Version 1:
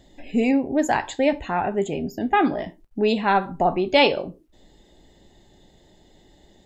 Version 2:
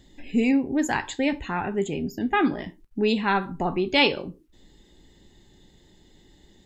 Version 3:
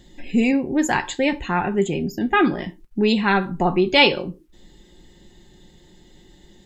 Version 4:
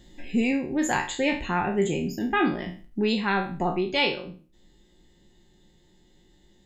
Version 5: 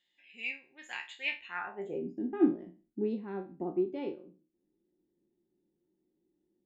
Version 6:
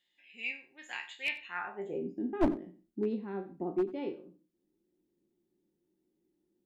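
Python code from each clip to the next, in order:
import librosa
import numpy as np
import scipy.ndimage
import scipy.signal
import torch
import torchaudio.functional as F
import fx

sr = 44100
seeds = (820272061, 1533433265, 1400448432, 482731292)

y1 = fx.peak_eq(x, sr, hz=650.0, db=-11.5, octaves=0.69)
y2 = y1 + 0.35 * np.pad(y1, (int(5.6 * sr / 1000.0), 0))[:len(y1)]
y2 = y2 * 10.0 ** (4.5 / 20.0)
y3 = fx.spec_trails(y2, sr, decay_s=0.39)
y3 = fx.rider(y3, sr, range_db=4, speed_s=0.5)
y3 = y3 * 10.0 ** (-7.0 / 20.0)
y4 = fx.filter_sweep_bandpass(y3, sr, from_hz=2600.0, to_hz=320.0, start_s=1.46, end_s=2.07, q=2.5)
y4 = fx.upward_expand(y4, sr, threshold_db=-47.0, expansion=1.5)
y4 = y4 * 10.0 ** (2.0 / 20.0)
y5 = np.minimum(y4, 2.0 * 10.0 ** (-23.5 / 20.0) - y4)
y5 = y5 + 10.0 ** (-17.0 / 20.0) * np.pad(y5, (int(91 * sr / 1000.0), 0))[:len(y5)]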